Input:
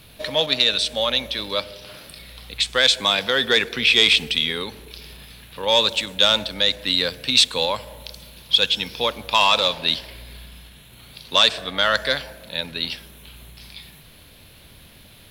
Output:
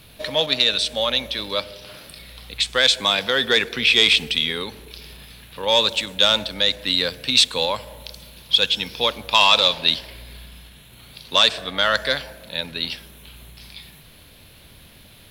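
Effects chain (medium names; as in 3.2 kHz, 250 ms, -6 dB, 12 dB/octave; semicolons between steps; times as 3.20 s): 8.87–9.90 s: dynamic bell 4 kHz, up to +4 dB, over -29 dBFS, Q 0.91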